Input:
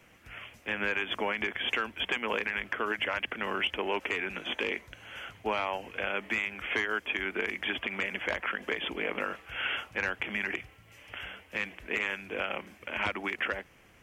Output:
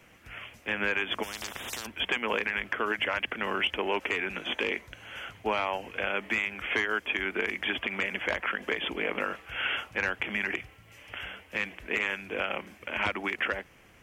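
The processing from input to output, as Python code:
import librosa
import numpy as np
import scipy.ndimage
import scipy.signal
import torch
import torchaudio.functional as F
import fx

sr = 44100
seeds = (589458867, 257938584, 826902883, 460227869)

y = fx.spectral_comp(x, sr, ratio=10.0, at=(1.22, 1.85), fade=0.02)
y = F.gain(torch.from_numpy(y), 2.0).numpy()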